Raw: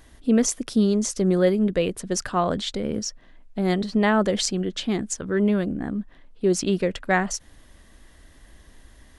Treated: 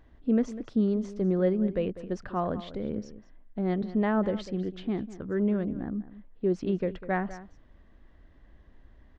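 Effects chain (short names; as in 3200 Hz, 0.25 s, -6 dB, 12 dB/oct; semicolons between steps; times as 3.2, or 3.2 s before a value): tape spacing loss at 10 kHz 38 dB; outdoor echo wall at 34 m, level -15 dB; gain -4.5 dB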